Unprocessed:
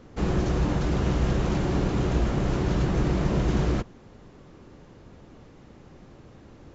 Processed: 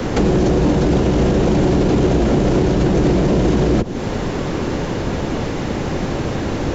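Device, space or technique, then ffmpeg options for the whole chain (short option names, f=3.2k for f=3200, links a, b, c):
mastering chain: -filter_complex "[0:a]equalizer=f=1.2k:t=o:w=0.31:g=-3.5,acrossover=split=91|190|630|2800[a][b][c][d][e];[a]acompressor=threshold=-37dB:ratio=4[f];[b]acompressor=threshold=-40dB:ratio=4[g];[c]acompressor=threshold=-32dB:ratio=4[h];[d]acompressor=threshold=-52dB:ratio=4[i];[e]acompressor=threshold=-57dB:ratio=4[j];[f][g][h][i][j]amix=inputs=5:normalize=0,acompressor=threshold=-39dB:ratio=1.5,asoftclip=type=hard:threshold=-27dB,alimiter=level_in=34.5dB:limit=-1dB:release=50:level=0:latency=1,lowshelf=f=210:g=-4.5,volume=-4.5dB"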